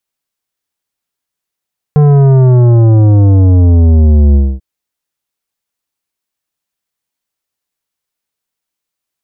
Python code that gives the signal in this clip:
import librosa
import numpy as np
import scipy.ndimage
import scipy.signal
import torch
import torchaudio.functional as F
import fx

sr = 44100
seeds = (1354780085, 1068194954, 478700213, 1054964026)

y = fx.sub_drop(sr, level_db=-4.5, start_hz=150.0, length_s=2.64, drive_db=11.5, fade_s=0.25, end_hz=65.0)